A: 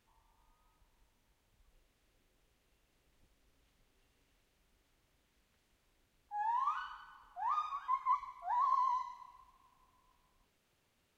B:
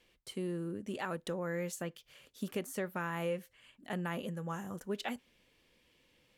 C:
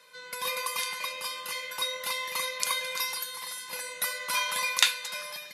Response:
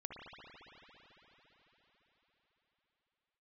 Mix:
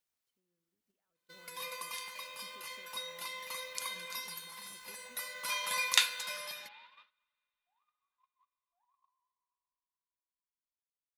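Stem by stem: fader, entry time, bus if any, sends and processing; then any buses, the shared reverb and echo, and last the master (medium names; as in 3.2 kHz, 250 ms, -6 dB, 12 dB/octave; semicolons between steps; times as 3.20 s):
-17.5 dB, 0.30 s, bus A, send -16.5 dB, local Wiener filter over 9 samples
-15.0 dB, 0.00 s, bus A, send -11.5 dB, reverb removal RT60 1.6 s; peak limiter -35 dBFS, peak gain reduction 11 dB; word length cut 8-bit, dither triangular
-4.5 dB, 1.15 s, no bus, send -13.5 dB, de-hum 62.53 Hz, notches 27; auto duck -8 dB, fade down 1.65 s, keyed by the second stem
bus A: 0.0 dB, compression 16:1, threshold -60 dBFS, peak gain reduction 15 dB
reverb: on, RT60 4.8 s, pre-delay 55 ms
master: gate -56 dBFS, range -25 dB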